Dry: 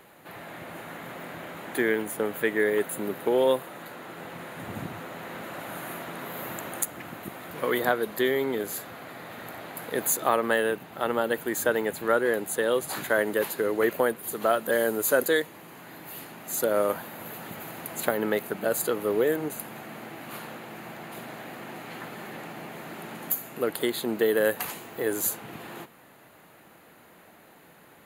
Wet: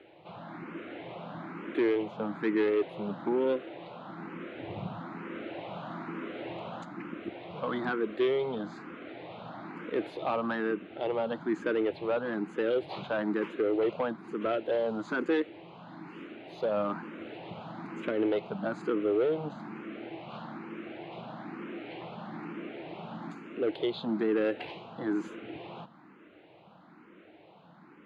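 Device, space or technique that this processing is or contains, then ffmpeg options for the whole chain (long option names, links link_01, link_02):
barber-pole phaser into a guitar amplifier: -filter_complex "[0:a]asplit=2[link_01][link_02];[link_02]afreqshift=1.1[link_03];[link_01][link_03]amix=inputs=2:normalize=1,asoftclip=type=tanh:threshold=-23.5dB,highpass=85,equalizer=frequency=190:width_type=q:width=4:gain=6,equalizer=frequency=320:width_type=q:width=4:gain=8,equalizer=frequency=1800:width_type=q:width=4:gain=-7,lowpass=frequency=3500:width=0.5412,lowpass=frequency=3500:width=1.3066"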